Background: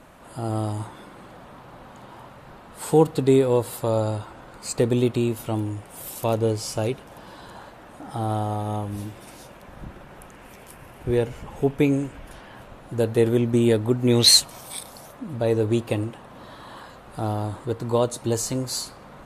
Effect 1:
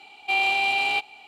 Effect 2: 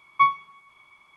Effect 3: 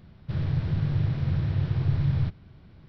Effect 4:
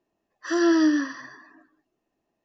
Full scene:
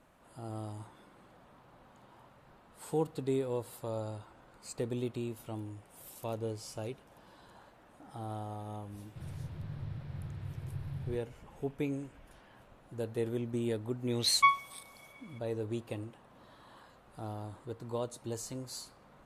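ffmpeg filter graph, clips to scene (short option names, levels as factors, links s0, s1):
-filter_complex "[0:a]volume=0.178[s0];[2:a]highshelf=f=2100:g=11[s1];[3:a]atrim=end=2.88,asetpts=PTS-STARTPTS,volume=0.158,afade=t=in:d=0.004:c=hsin,afade=t=out:st=2.876:d=0.004:c=hsin,adelay=8870[s2];[s1]atrim=end=1.16,asetpts=PTS-STARTPTS,volume=0.376,afade=t=in:d=0.004:c=hsin,afade=t=out:st=1.156:d=0.004:c=hsin,adelay=14230[s3];[s0][s2][s3]amix=inputs=3:normalize=0"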